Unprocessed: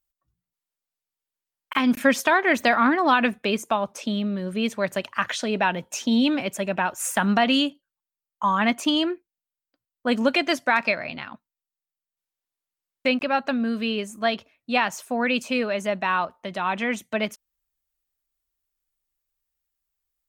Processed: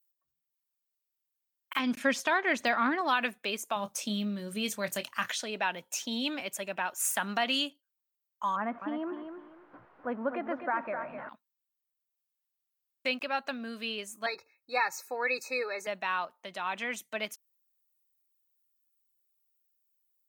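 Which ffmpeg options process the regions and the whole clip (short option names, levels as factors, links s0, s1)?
-filter_complex "[0:a]asettb=1/sr,asplit=3[s0][s1][s2];[s0]atrim=end=1.794[s3];[s1]atrim=start=1.79:end=3.01,asetpts=PTS-STARTPTS,afade=t=in:d=0.004:c=qsin,afade=t=out:st=1.216:d=0.004:c=qsin,lowpass=7000,deesser=0.6,lowshelf=f=250:g=10[s4];[s2]atrim=start=3.006[s5];[s3][s4]acrossfade=d=0.004:c1=hsin:c2=qsin[s6];[s6][s5]acrossfade=d=0.004:c1=qsin:c2=hsin,asettb=1/sr,asplit=3[s7][s8][s9];[s7]atrim=end=3.764[s10];[s8]atrim=start=3.76:end=5.32,asetpts=PTS-STARTPTS,afade=t=in:d=0.004:c=qsin,afade=t=out:st=1.556:d=0.004:c=qsin,bass=f=250:g=12,treble=f=4000:g=7,asplit=2[s11][s12];[s12]adelay=24,volume=0.282[s13];[s11][s13]amix=inputs=2:normalize=0,atrim=end_sample=68796[s14];[s9]atrim=start=5.316[s15];[s10][s14]acrossfade=d=0.004:c1=hsin:c2=qsin[s16];[s16][s15]acrossfade=d=0.004:c1=qsin:c2=hsin,asettb=1/sr,asplit=3[s17][s18][s19];[s17]atrim=end=8.564[s20];[s18]atrim=start=8.56:end=11.29,asetpts=PTS-STARTPTS,afade=t=in:d=0.004:c=qsin,afade=t=out:st=2.726:d=0.004:c=qsin,aeval=exprs='val(0)+0.5*0.0335*sgn(val(0))':c=same,lowpass=f=1400:w=0.5412,lowpass=f=1400:w=1.3066,aecho=1:1:254|508|762:0.398|0.0955|0.0229,atrim=end_sample=120393[s21];[s19]atrim=start=11.286[s22];[s20][s21]acrossfade=d=0.004:c1=hsin:c2=qsin[s23];[s23][s22]acrossfade=d=0.004:c1=qsin:c2=hsin,asettb=1/sr,asplit=3[s24][s25][s26];[s24]atrim=end=14.264[s27];[s25]atrim=start=14.26:end=15.87,asetpts=PTS-STARTPTS,afade=t=in:d=0.004:c=qsin,afade=t=out:st=1.606:d=0.004:c=qsin,asuperstop=centerf=3100:order=20:qfactor=2.8,equalizer=f=10000:t=o:w=0.93:g=-9,aecho=1:1:2.3:0.91,atrim=end_sample=71001[s28];[s26]atrim=start=15.866[s29];[s27][s28]acrossfade=d=0.004:c1=hsin:c2=qsin[s30];[s30][s29]acrossfade=d=0.004:c1=qsin:c2=hsin,lowpass=f=3900:p=1,aemphasis=mode=production:type=riaa,volume=0.376"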